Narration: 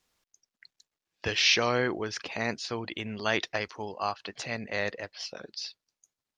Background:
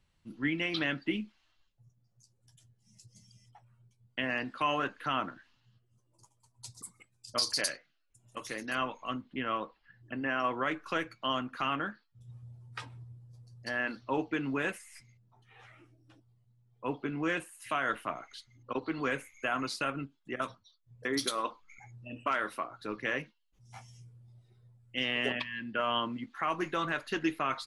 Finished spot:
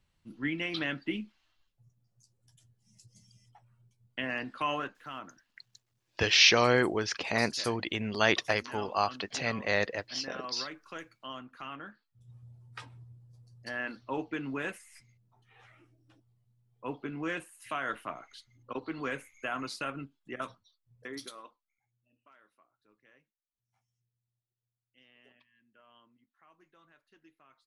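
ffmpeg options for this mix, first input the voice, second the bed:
ffmpeg -i stem1.wav -i stem2.wav -filter_complex "[0:a]adelay=4950,volume=2.5dB[link_01];[1:a]volume=6dB,afade=type=out:start_time=4.74:duration=0.24:silence=0.354813,afade=type=in:start_time=11.81:duration=0.62:silence=0.421697,afade=type=out:start_time=20.47:duration=1.17:silence=0.0398107[link_02];[link_01][link_02]amix=inputs=2:normalize=0" out.wav

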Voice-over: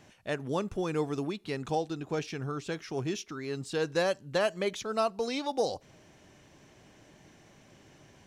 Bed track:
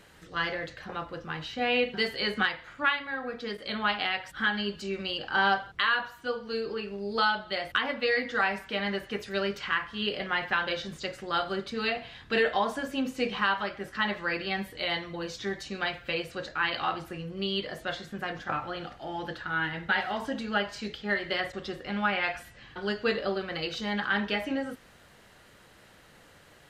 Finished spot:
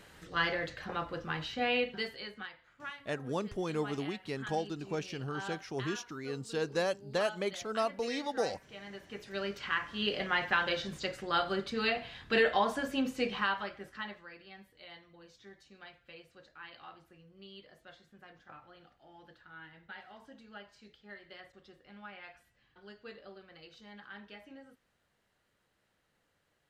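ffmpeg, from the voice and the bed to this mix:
ffmpeg -i stem1.wav -i stem2.wav -filter_complex "[0:a]adelay=2800,volume=-3.5dB[link_01];[1:a]volume=15.5dB,afade=type=out:start_time=1.34:duration=0.98:silence=0.141254,afade=type=in:start_time=8.86:duration=1.3:silence=0.158489,afade=type=out:start_time=12.97:duration=1.32:silence=0.105925[link_02];[link_01][link_02]amix=inputs=2:normalize=0" out.wav

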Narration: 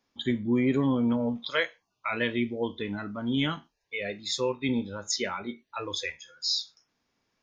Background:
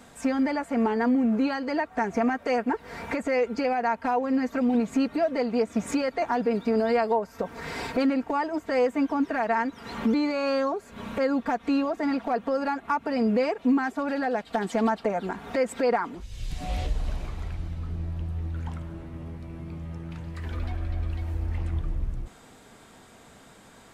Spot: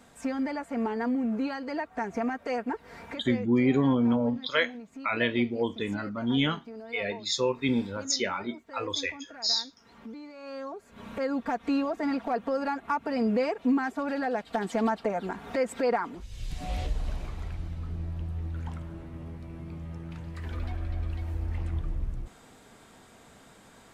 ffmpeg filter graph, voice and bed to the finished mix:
ffmpeg -i stem1.wav -i stem2.wav -filter_complex "[0:a]adelay=3000,volume=1.5dB[link_01];[1:a]volume=11dB,afade=type=out:start_time=2.73:duration=0.85:silence=0.211349,afade=type=in:start_time=10.36:duration=1.28:silence=0.149624[link_02];[link_01][link_02]amix=inputs=2:normalize=0" out.wav

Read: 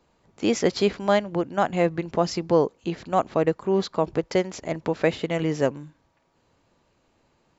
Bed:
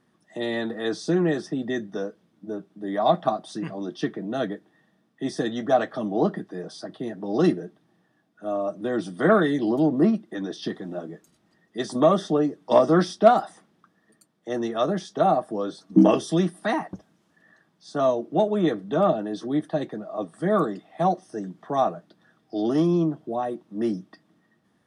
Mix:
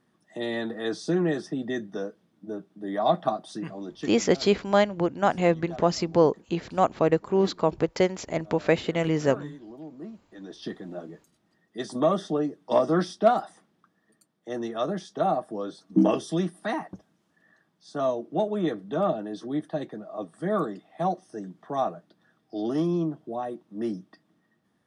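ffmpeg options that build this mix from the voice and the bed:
ffmpeg -i stem1.wav -i stem2.wav -filter_complex "[0:a]adelay=3650,volume=0dB[link_01];[1:a]volume=14dB,afade=type=out:start_time=3.54:duration=0.94:silence=0.11885,afade=type=in:start_time=10.27:duration=0.45:silence=0.149624[link_02];[link_01][link_02]amix=inputs=2:normalize=0" out.wav

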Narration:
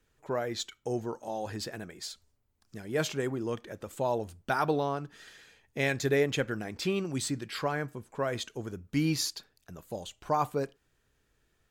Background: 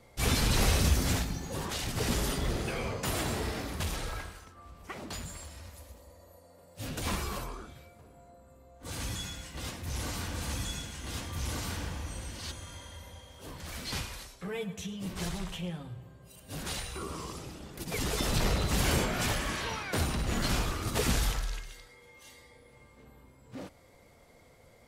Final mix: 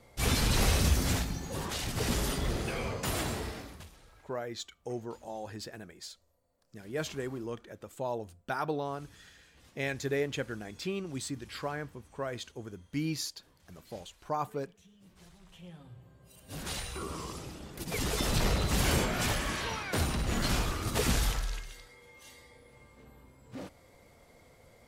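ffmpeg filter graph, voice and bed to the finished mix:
ffmpeg -i stem1.wav -i stem2.wav -filter_complex "[0:a]adelay=4000,volume=-5dB[link_01];[1:a]volume=21dB,afade=type=out:start_time=3.2:duration=0.7:silence=0.0891251,afade=type=in:start_time=15.41:duration=1.47:silence=0.0841395[link_02];[link_01][link_02]amix=inputs=2:normalize=0" out.wav

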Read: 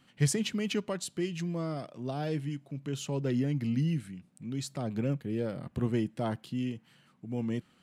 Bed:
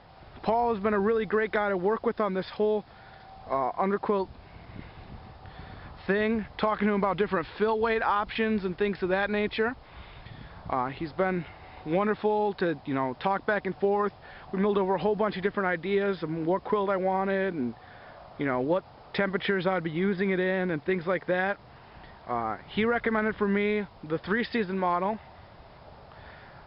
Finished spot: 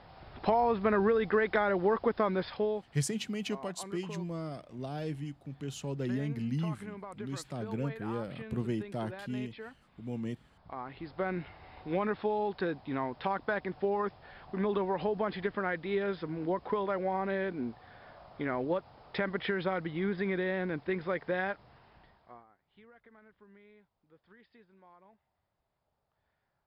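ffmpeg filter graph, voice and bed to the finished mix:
ffmpeg -i stem1.wav -i stem2.wav -filter_complex "[0:a]adelay=2750,volume=-4dB[link_01];[1:a]volume=11.5dB,afade=type=out:start_time=2.4:duration=0.62:silence=0.141254,afade=type=in:start_time=10.57:duration=0.83:silence=0.223872,afade=type=out:start_time=21.42:duration=1.04:silence=0.0446684[link_02];[link_01][link_02]amix=inputs=2:normalize=0" out.wav

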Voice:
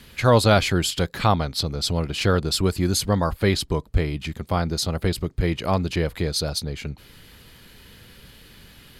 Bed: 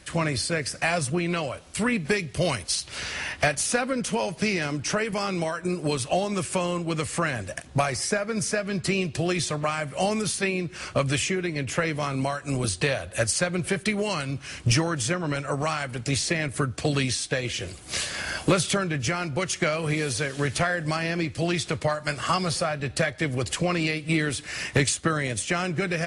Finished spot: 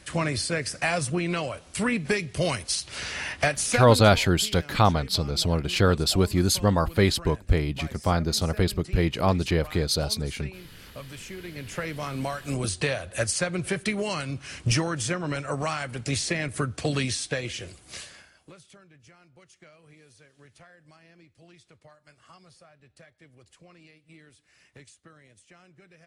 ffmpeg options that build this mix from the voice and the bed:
ffmpeg -i stem1.wav -i stem2.wav -filter_complex "[0:a]adelay=3550,volume=-0.5dB[link_01];[1:a]volume=14.5dB,afade=type=out:start_time=3.78:duration=0.32:silence=0.149624,afade=type=in:start_time=11.17:duration=1.34:silence=0.16788,afade=type=out:start_time=17.29:duration=1.01:silence=0.0473151[link_02];[link_01][link_02]amix=inputs=2:normalize=0" out.wav

